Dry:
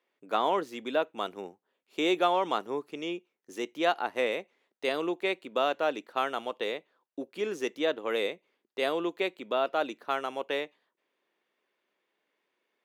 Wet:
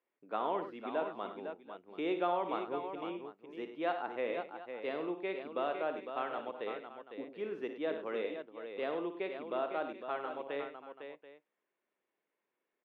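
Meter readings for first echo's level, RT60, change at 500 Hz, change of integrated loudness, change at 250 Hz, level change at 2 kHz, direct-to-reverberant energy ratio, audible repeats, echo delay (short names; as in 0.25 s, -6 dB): -9.5 dB, none, -6.5 dB, -7.5 dB, -6.0 dB, -9.5 dB, none, 4, 57 ms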